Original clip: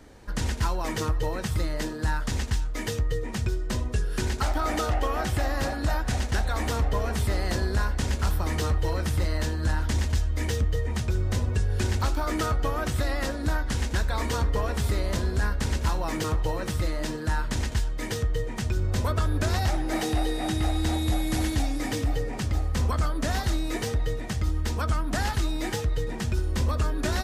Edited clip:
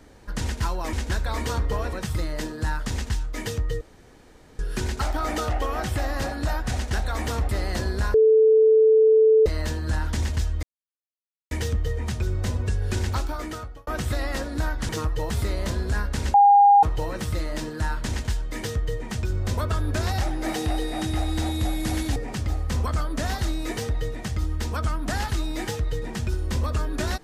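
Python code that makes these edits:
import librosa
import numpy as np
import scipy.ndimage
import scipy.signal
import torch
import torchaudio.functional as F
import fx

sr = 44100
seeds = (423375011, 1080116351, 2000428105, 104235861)

y = fx.edit(x, sr, fx.swap(start_s=0.93, length_s=0.41, other_s=13.77, other_length_s=1.0),
    fx.room_tone_fill(start_s=3.22, length_s=0.78),
    fx.cut(start_s=6.9, length_s=0.35),
    fx.bleep(start_s=7.9, length_s=1.32, hz=439.0, db=-12.5),
    fx.insert_silence(at_s=10.39, length_s=0.88),
    fx.fade_out_span(start_s=12.0, length_s=0.75),
    fx.bleep(start_s=15.81, length_s=0.49, hz=810.0, db=-10.5),
    fx.cut(start_s=21.63, length_s=0.58), tone=tone)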